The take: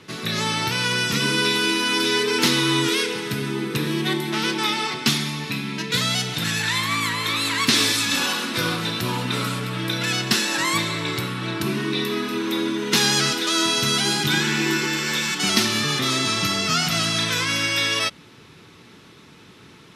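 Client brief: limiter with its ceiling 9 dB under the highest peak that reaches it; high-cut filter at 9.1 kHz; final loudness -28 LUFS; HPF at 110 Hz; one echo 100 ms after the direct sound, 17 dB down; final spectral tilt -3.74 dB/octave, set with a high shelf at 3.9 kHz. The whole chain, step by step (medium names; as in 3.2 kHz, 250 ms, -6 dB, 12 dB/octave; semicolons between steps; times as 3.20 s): high-pass 110 Hz; low-pass 9.1 kHz; treble shelf 3.9 kHz -8 dB; peak limiter -15.5 dBFS; delay 100 ms -17 dB; trim -3 dB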